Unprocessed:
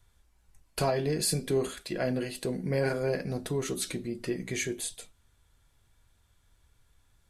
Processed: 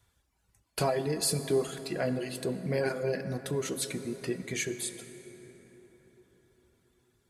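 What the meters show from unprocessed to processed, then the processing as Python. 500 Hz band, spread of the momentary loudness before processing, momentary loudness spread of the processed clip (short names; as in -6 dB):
-0.5 dB, 7 LU, 12 LU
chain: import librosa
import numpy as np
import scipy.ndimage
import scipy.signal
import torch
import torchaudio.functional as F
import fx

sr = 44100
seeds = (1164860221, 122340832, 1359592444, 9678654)

y = fx.dereverb_blind(x, sr, rt60_s=1.2)
y = scipy.signal.sosfilt(scipy.signal.butter(2, 72.0, 'highpass', fs=sr, output='sos'), y)
y = fx.rev_plate(y, sr, seeds[0], rt60_s=5.0, hf_ratio=0.45, predelay_ms=0, drr_db=9.5)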